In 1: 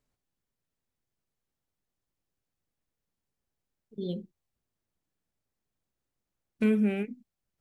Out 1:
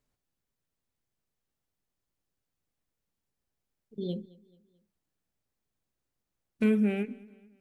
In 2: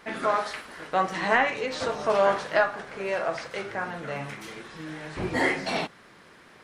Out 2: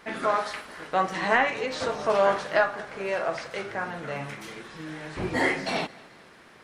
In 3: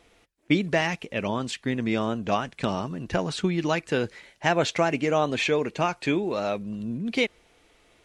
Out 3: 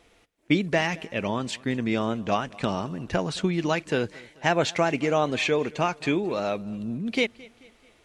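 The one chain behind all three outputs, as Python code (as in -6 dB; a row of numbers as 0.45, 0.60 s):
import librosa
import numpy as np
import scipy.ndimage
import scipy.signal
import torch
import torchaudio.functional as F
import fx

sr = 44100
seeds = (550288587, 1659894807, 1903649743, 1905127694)

y = fx.echo_feedback(x, sr, ms=218, feedback_pct=46, wet_db=-23.0)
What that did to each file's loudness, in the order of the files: 0.0, 0.0, 0.0 LU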